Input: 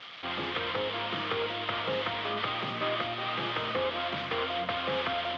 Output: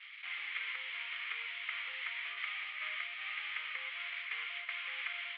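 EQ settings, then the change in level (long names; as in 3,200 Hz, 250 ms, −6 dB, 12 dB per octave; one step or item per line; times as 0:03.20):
four-pole ladder band-pass 2,400 Hz, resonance 65%
high-frequency loss of the air 240 metres
+5.0 dB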